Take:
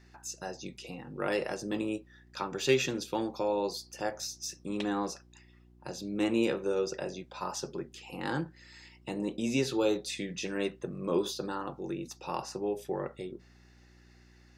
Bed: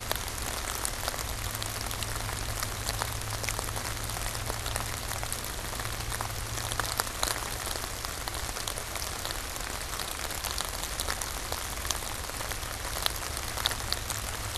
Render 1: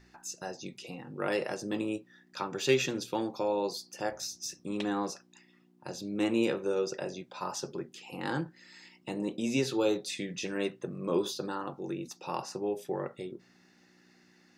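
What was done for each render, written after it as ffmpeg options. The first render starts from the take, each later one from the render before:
-af "bandreject=f=60:t=h:w=4,bandreject=f=120:t=h:w=4"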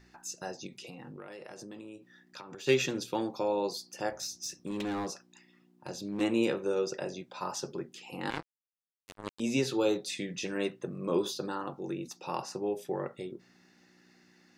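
-filter_complex "[0:a]asplit=3[a][b][c];[a]afade=t=out:st=0.66:d=0.02[d];[b]acompressor=threshold=-41dB:ratio=16:attack=3.2:release=140:knee=1:detection=peak,afade=t=in:st=0.66:d=0.02,afade=t=out:st=2.66:d=0.02[e];[c]afade=t=in:st=2.66:d=0.02[f];[d][e][f]amix=inputs=3:normalize=0,asettb=1/sr,asplit=3[g][h][i];[g]atrim=end=4.194[j];[h]atrim=start=4.19:end=6.21,asetpts=PTS-STARTPTS,afade=t=in:d=0.004:c=qsin,afade=t=out:st=2.016:d=0.004:c=qsin,volume=30dB,asoftclip=hard,volume=-30dB[k];[i]atrim=start=6.206[l];[j][k]acrossfade=d=0.004:c1=hsin:c2=qsin[m];[m][l]acrossfade=d=0.004:c1=qsin:c2=hsin,asettb=1/sr,asplit=3[n][o][p];[n]atrim=end=8.304[q];[o]atrim=start=8.3:end=9.4,asetpts=PTS-STARTPTS,afade=t=in:d=0.004:c=qsin,afade=t=out:st=1.096:d=0.004:c=qsin,acrusher=bits=3:mix=0:aa=0.5[r];[p]atrim=start=9.396[s];[q][r]acrossfade=d=0.004:c1=hsin:c2=qsin[t];[t][s]acrossfade=d=0.004:c1=qsin:c2=hsin"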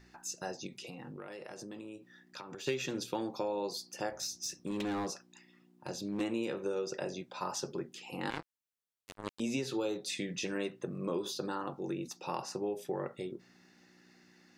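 -af "acompressor=threshold=-31dB:ratio=6"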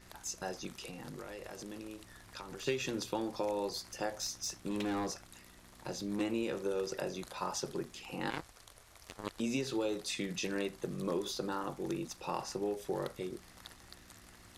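-filter_complex "[1:a]volume=-23.5dB[a];[0:a][a]amix=inputs=2:normalize=0"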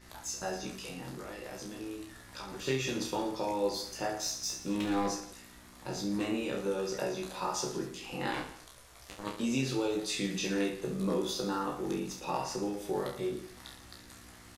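-filter_complex "[0:a]asplit=2[a][b];[b]adelay=16,volume=-4dB[c];[a][c]amix=inputs=2:normalize=0,aecho=1:1:30|67.5|114.4|173|246.2:0.631|0.398|0.251|0.158|0.1"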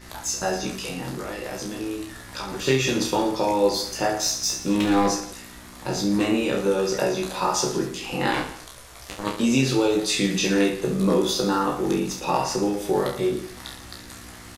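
-af "volume=11dB"

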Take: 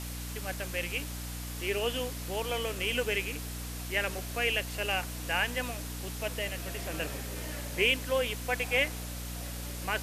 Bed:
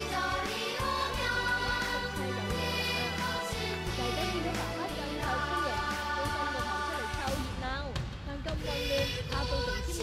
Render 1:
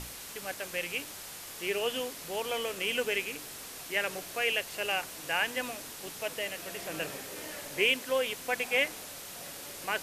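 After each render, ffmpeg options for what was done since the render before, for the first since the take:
-af "bandreject=f=60:t=h:w=6,bandreject=f=120:t=h:w=6,bandreject=f=180:t=h:w=6,bandreject=f=240:t=h:w=6,bandreject=f=300:t=h:w=6"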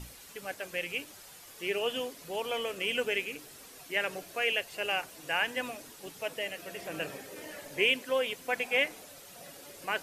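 -af "afftdn=nr=9:nf=-44"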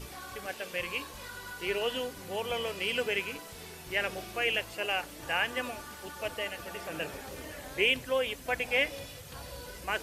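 -filter_complex "[1:a]volume=-13.5dB[a];[0:a][a]amix=inputs=2:normalize=0"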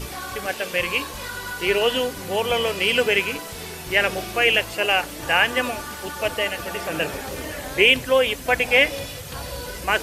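-af "volume=11.5dB,alimiter=limit=-3dB:level=0:latency=1"

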